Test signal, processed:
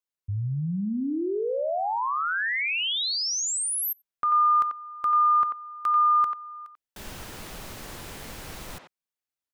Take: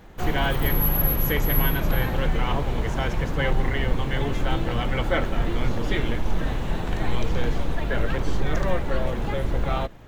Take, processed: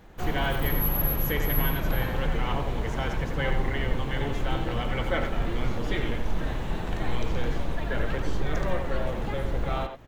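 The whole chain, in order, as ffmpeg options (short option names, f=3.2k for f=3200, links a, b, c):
-filter_complex "[0:a]asplit=2[a][b];[b]adelay=90,highpass=300,lowpass=3.4k,asoftclip=type=hard:threshold=-16dB,volume=-6dB[c];[a][c]amix=inputs=2:normalize=0,volume=-4dB"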